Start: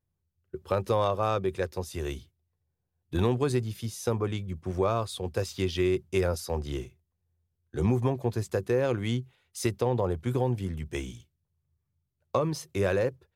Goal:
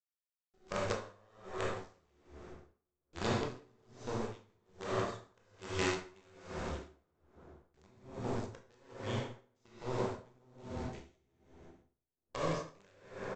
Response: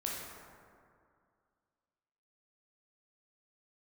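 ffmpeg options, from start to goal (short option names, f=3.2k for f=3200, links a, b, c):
-filter_complex "[0:a]aresample=16000,acrusher=bits=4:dc=4:mix=0:aa=0.000001,aresample=44100,aecho=1:1:165|330|495|660|825:0.2|0.108|0.0582|0.0314|0.017[a];[1:a]atrim=start_sample=2205,asetrate=43218,aresample=44100[b];[a][b]afir=irnorm=-1:irlink=0,aeval=exprs='val(0)*pow(10,-33*(0.5-0.5*cos(2*PI*1.2*n/s))/20)':c=same,volume=-6dB"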